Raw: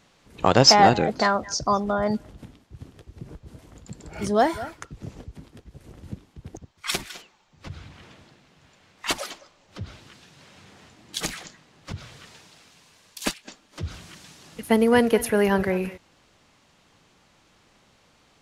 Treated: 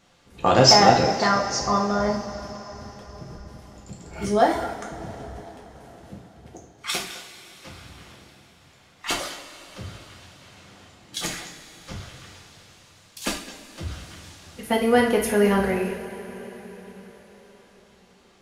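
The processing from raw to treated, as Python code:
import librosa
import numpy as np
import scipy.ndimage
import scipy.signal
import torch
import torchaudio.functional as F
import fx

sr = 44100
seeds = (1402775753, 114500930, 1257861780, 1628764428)

y = fx.highpass(x, sr, hz=190.0, slope=6, at=(5.36, 7.85))
y = fx.rev_double_slope(y, sr, seeds[0], early_s=0.46, late_s=5.0, knee_db=-18, drr_db=-2.0)
y = y * librosa.db_to_amplitude(-3.0)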